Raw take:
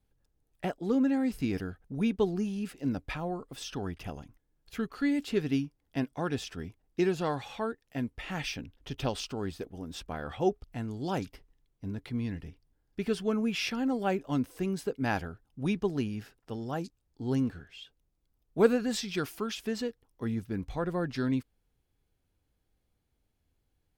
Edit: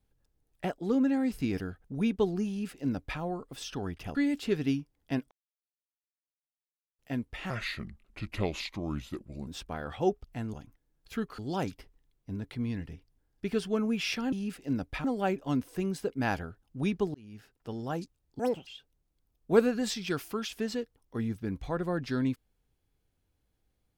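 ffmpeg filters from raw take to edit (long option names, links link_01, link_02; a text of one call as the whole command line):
ffmpeg -i in.wav -filter_complex "[0:a]asplit=13[link_01][link_02][link_03][link_04][link_05][link_06][link_07][link_08][link_09][link_10][link_11][link_12][link_13];[link_01]atrim=end=4.152[link_14];[link_02]atrim=start=4.998:end=6.16,asetpts=PTS-STARTPTS,afade=type=out:start_time=1.158:duration=0.004:curve=hsin[link_15];[link_03]atrim=start=6.16:end=7.84,asetpts=PTS-STARTPTS,volume=0[link_16];[link_04]atrim=start=7.84:end=8.354,asetpts=PTS-STARTPTS,afade=type=in:duration=0.004:curve=hsin[link_17];[link_05]atrim=start=8.35:end=9.87,asetpts=PTS-STARTPTS,asetrate=33957,aresample=44100[link_18];[link_06]atrim=start=9.866:end=10.932[link_19];[link_07]atrim=start=4.148:end=5.002[link_20];[link_08]atrim=start=10.928:end=13.872[link_21];[link_09]atrim=start=2.478:end=3.202[link_22];[link_10]atrim=start=13.868:end=15.97,asetpts=PTS-STARTPTS,afade=type=out:start_time=2.098:duration=0.004:curve=hsin[link_23];[link_11]atrim=start=15.97:end=17.224,asetpts=PTS-STARTPTS,afade=type=in:duration=0.6[link_24];[link_12]atrim=start=17.22:end=17.74,asetpts=PTS-STARTPTS,asetrate=82908,aresample=44100[link_25];[link_13]atrim=start=17.736[link_26];[link_15][link_16][link_17]concat=n=3:v=0:a=1[link_27];[link_14][link_27]acrossfade=duration=0.004:curve1=hsin:curve2=hsin[link_28];[link_28][link_18]acrossfade=duration=0.004:curve1=hsin:curve2=hsin[link_29];[link_29][link_19]acrossfade=duration=0.004:curve1=hsin:curve2=hsin[link_30];[link_30][link_20]acrossfade=duration=0.004:curve1=hsin:curve2=hsin[link_31];[link_31][link_21]acrossfade=duration=0.004:curve1=hsin:curve2=hsin[link_32];[link_32][link_22]acrossfade=duration=0.004:curve1=hsin:curve2=hsin[link_33];[link_23][link_24]concat=n=2:v=0:a=1[link_34];[link_33][link_34]acrossfade=duration=0.004:curve1=hsin:curve2=hsin[link_35];[link_35][link_25]acrossfade=duration=0.004:curve1=hsin:curve2=hsin[link_36];[link_36][link_26]acrossfade=duration=0.004:curve1=hsin:curve2=hsin" out.wav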